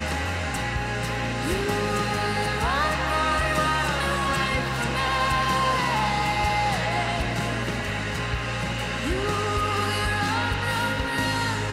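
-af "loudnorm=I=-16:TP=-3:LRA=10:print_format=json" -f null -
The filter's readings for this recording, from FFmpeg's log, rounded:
"input_i" : "-24.6",
"input_tp" : "-14.4",
"input_lra" : "2.1",
"input_thresh" : "-34.6",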